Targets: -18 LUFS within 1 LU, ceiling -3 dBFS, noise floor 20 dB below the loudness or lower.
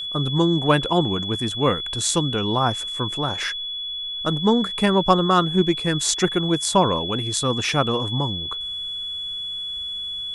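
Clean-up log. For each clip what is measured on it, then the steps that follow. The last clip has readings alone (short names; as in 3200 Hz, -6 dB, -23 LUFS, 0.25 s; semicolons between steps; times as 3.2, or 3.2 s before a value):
steady tone 3400 Hz; tone level -27 dBFS; loudness -21.5 LUFS; peak -2.0 dBFS; loudness target -18.0 LUFS
-> notch 3400 Hz, Q 30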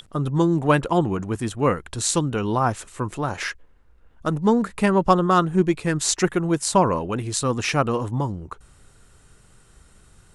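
steady tone none; loudness -22.0 LUFS; peak -2.5 dBFS; loudness target -18.0 LUFS
-> gain +4 dB; limiter -3 dBFS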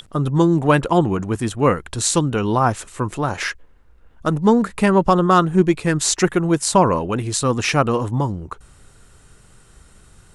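loudness -18.5 LUFS; peak -3.0 dBFS; noise floor -50 dBFS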